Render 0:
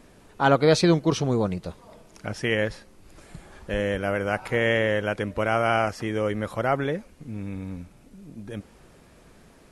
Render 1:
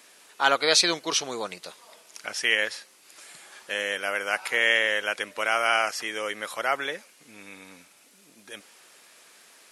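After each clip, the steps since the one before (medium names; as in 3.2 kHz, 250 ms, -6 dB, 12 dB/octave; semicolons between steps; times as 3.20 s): high-pass 340 Hz 12 dB/octave; tilt shelf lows -10 dB, about 1.1 kHz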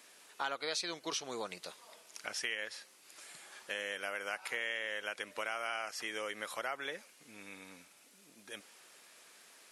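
compression 4:1, threshold -30 dBFS, peak gain reduction 12.5 dB; trim -5.5 dB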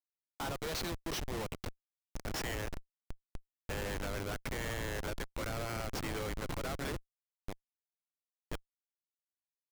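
Schmitt trigger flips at -38.5 dBFS; trim +5.5 dB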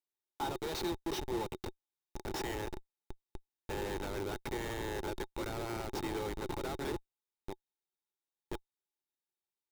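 small resonant body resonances 370/850/3700 Hz, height 13 dB, ringing for 40 ms; trim -3.5 dB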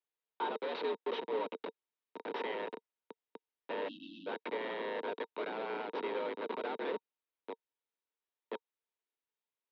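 mistuned SSB +79 Hz 160–3500 Hz; spectral selection erased 3.88–4.27 s, 330–2600 Hz; trim +1 dB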